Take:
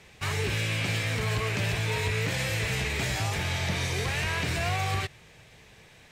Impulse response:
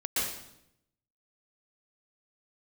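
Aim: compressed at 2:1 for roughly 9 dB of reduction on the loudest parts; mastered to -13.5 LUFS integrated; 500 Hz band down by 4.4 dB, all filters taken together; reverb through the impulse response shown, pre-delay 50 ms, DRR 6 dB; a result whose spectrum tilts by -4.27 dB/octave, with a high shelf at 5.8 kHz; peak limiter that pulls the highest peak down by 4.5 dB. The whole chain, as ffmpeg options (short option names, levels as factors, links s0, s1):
-filter_complex "[0:a]equalizer=f=500:t=o:g=-5.5,highshelf=f=5800:g=3.5,acompressor=threshold=0.00794:ratio=2,alimiter=level_in=2.24:limit=0.0631:level=0:latency=1,volume=0.447,asplit=2[s0][s1];[1:a]atrim=start_sample=2205,adelay=50[s2];[s1][s2]afir=irnorm=-1:irlink=0,volume=0.2[s3];[s0][s3]amix=inputs=2:normalize=0,volume=16.8"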